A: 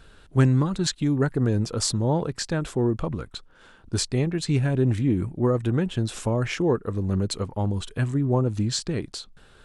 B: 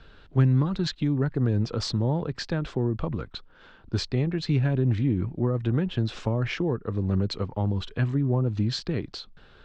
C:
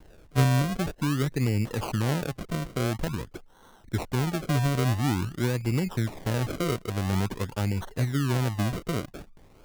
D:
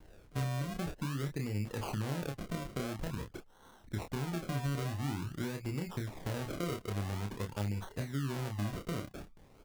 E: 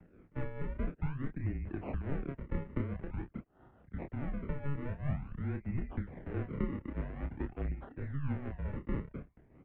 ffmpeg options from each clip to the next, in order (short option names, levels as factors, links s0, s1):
-filter_complex "[0:a]lowpass=f=4800:w=0.5412,lowpass=f=4800:w=1.3066,acrossover=split=190[s0][s1];[s1]acompressor=threshold=0.0501:ratio=6[s2];[s0][s2]amix=inputs=2:normalize=0"
-af "acrusher=samples=35:mix=1:aa=0.000001:lfo=1:lforange=35:lforate=0.48,volume=0.841"
-filter_complex "[0:a]acompressor=threshold=0.0355:ratio=4,asplit=2[s0][s1];[s1]adelay=29,volume=0.562[s2];[s0][s2]amix=inputs=2:normalize=0,volume=0.531"
-af "tremolo=f=4.7:d=0.54,equalizer=f=1200:w=0.59:g=-13.5,highpass=f=180:t=q:w=0.5412,highpass=f=180:t=q:w=1.307,lowpass=f=2200:t=q:w=0.5176,lowpass=f=2200:t=q:w=0.7071,lowpass=f=2200:t=q:w=1.932,afreqshift=-140,volume=3.16"